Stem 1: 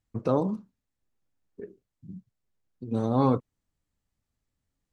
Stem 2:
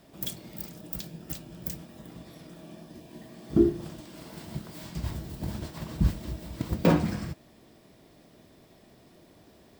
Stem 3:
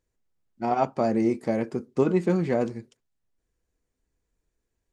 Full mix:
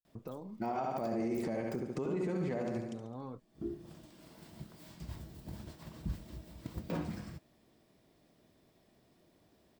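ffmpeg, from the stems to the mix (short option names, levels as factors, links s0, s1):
-filter_complex "[0:a]acompressor=threshold=0.0355:ratio=4,volume=0.237,asplit=2[s0][s1];[1:a]adelay=50,volume=0.266[s2];[2:a]volume=1.33,asplit=2[s3][s4];[s4]volume=0.299[s5];[s1]apad=whole_len=434349[s6];[s2][s6]sidechaincompress=threshold=0.00141:ratio=8:attack=16:release=494[s7];[s0][s3]amix=inputs=2:normalize=0,agate=range=0.0224:threshold=0.00355:ratio=3:detection=peak,acompressor=threshold=0.0708:ratio=6,volume=1[s8];[s5]aecho=0:1:70|140|210|280|350|420|490|560:1|0.52|0.27|0.141|0.0731|0.038|0.0198|0.0103[s9];[s7][s8][s9]amix=inputs=3:normalize=0,alimiter=level_in=1.41:limit=0.0631:level=0:latency=1:release=88,volume=0.708"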